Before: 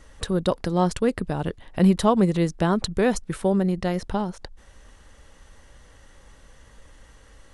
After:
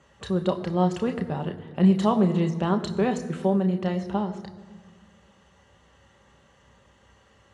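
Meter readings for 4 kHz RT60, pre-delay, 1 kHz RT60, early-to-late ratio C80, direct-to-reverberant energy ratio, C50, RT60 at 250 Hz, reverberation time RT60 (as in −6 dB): 1.2 s, 3 ms, 1.7 s, 13.0 dB, 4.5 dB, 12.0 dB, 2.2 s, 1.7 s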